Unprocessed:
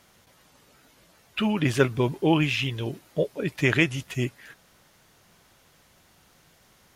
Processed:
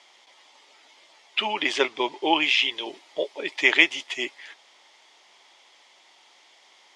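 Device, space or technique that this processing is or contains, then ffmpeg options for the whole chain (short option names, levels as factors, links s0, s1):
phone speaker on a table: -filter_complex "[0:a]asettb=1/sr,asplit=3[s0][s1][s2];[s0]atrim=end=1.744[s3];[s1]atrim=start=1.74:end=2.22,asetpts=PTS-STARTPTS,afade=t=in:d=0.004:c=qsin,afade=t=out:st=0.476:d=0.004:c=qsin,lowpass=8600[s4];[s2]atrim=start=2.216[s5];[s3][s4]acrossfade=d=0.004:c1=hsin:c2=qsin[s6];[s6][s5]acrossfade=d=0.004:c1=qsin:c2=hsin,highpass=f=370:w=0.5412,highpass=f=370:w=1.3066,equalizer=f=480:t=q:w=4:g=-6,equalizer=f=880:t=q:w=4:g=7,equalizer=f=1500:t=q:w=4:g=-7,equalizer=f=2100:t=q:w=4:g=8,equalizer=f=3300:t=q:w=4:g=9,equalizer=f=4900:t=q:w=4:g=4,lowpass=f=7800:w=0.5412,lowpass=f=7800:w=1.3066,volume=1.19"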